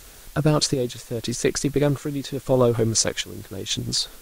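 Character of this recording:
chopped level 0.81 Hz, depth 60%, duty 60%
a quantiser's noise floor 8 bits, dither triangular
Ogg Vorbis

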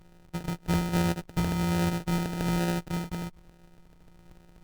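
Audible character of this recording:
a buzz of ramps at a fixed pitch in blocks of 256 samples
phaser sweep stages 2, 1.2 Hz, lowest notch 560–1,800 Hz
aliases and images of a low sample rate 1,100 Hz, jitter 0%
Ogg Vorbis

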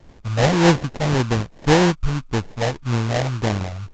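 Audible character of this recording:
phaser sweep stages 12, 1.8 Hz, lowest notch 310–1,100 Hz
aliases and images of a low sample rate 1,300 Hz, jitter 20%
A-law companding

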